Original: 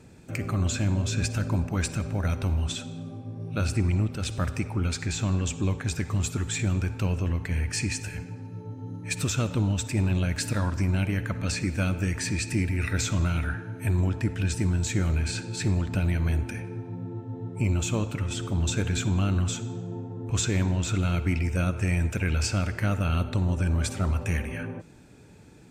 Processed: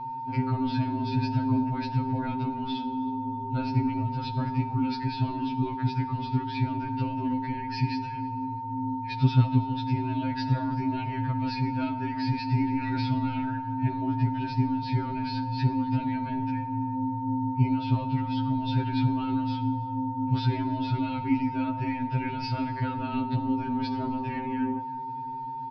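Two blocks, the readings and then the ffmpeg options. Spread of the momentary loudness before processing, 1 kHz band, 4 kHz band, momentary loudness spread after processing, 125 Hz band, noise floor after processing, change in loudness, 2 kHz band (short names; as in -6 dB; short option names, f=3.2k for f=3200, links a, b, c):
10 LU, +11.0 dB, -5.5 dB, 5 LU, -2.5 dB, -35 dBFS, -1.0 dB, -6.5 dB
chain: -filter_complex "[0:a]aeval=exprs='val(0)+0.0224*sin(2*PI*910*n/s)':c=same,equalizer=f=280:w=4.8:g=10.5,areverse,acompressor=mode=upward:threshold=-34dB:ratio=2.5,areverse,bass=f=250:g=10,treble=f=4k:g=4,asplit=2[a][b];[b]adelay=326,lowpass=f=2.1k:p=1,volume=-19dB,asplit=2[c][d];[d]adelay=326,lowpass=f=2.1k:p=1,volume=0.52,asplit=2[e][f];[f]adelay=326,lowpass=f=2.1k:p=1,volume=0.52,asplit=2[g][h];[h]adelay=326,lowpass=f=2.1k:p=1,volume=0.52[i];[a][c][e][g][i]amix=inputs=5:normalize=0,aresample=11025,aresample=44100,afftfilt=real='re*2.45*eq(mod(b,6),0)':imag='im*2.45*eq(mod(b,6),0)':win_size=2048:overlap=0.75,volume=-4.5dB"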